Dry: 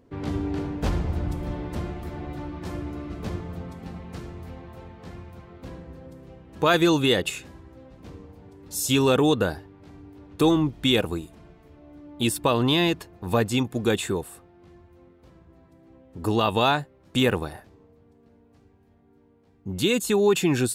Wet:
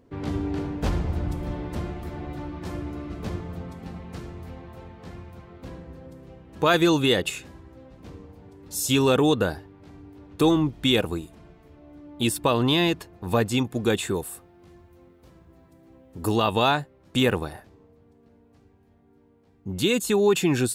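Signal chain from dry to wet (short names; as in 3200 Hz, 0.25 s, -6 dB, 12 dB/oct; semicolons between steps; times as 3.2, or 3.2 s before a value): 14.14–16.38 high shelf 6900 Hz +10 dB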